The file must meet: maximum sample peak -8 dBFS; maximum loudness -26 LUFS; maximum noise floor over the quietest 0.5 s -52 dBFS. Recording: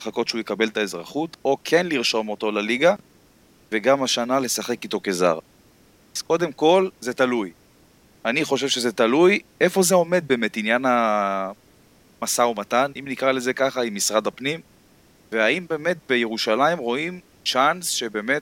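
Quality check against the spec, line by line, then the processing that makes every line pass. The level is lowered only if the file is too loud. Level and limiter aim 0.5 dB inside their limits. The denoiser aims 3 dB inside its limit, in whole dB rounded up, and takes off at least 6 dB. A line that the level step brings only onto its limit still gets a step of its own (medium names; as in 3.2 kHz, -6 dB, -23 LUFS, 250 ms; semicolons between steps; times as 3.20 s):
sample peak -5.0 dBFS: fail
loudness -21.5 LUFS: fail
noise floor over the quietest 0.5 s -55 dBFS: pass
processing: trim -5 dB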